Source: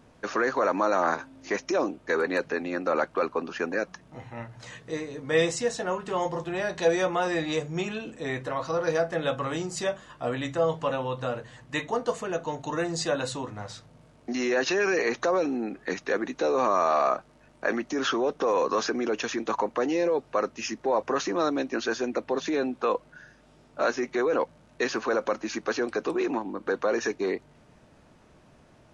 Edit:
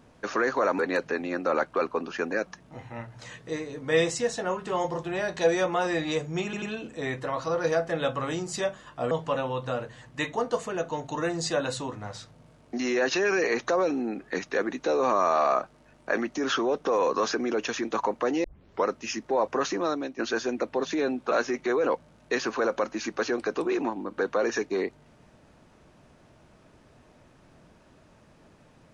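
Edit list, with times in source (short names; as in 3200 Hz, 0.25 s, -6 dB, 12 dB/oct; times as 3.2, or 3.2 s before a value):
0.79–2.2 cut
7.85 stutter 0.09 s, 3 plays
10.34–10.66 cut
19.99 tape start 0.42 s
21.27–21.74 fade out, to -9 dB
22.86–23.8 cut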